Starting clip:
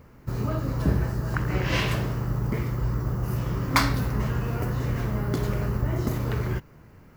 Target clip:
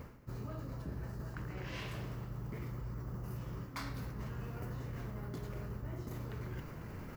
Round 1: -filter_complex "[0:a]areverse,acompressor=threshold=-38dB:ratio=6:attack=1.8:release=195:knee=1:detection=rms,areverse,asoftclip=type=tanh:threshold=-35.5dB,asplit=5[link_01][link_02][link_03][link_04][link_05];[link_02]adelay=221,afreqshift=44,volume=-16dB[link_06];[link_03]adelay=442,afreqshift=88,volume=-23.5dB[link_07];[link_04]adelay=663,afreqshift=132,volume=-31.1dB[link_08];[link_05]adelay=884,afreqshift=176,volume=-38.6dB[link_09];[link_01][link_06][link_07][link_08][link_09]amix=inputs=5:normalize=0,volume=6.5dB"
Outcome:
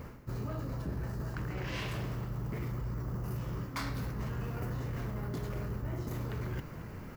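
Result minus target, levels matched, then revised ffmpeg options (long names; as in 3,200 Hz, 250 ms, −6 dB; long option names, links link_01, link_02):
downward compressor: peak gain reduction −6.5 dB
-filter_complex "[0:a]areverse,acompressor=threshold=-46dB:ratio=6:attack=1.8:release=195:knee=1:detection=rms,areverse,asoftclip=type=tanh:threshold=-35.5dB,asplit=5[link_01][link_02][link_03][link_04][link_05];[link_02]adelay=221,afreqshift=44,volume=-16dB[link_06];[link_03]adelay=442,afreqshift=88,volume=-23.5dB[link_07];[link_04]adelay=663,afreqshift=132,volume=-31.1dB[link_08];[link_05]adelay=884,afreqshift=176,volume=-38.6dB[link_09];[link_01][link_06][link_07][link_08][link_09]amix=inputs=5:normalize=0,volume=6.5dB"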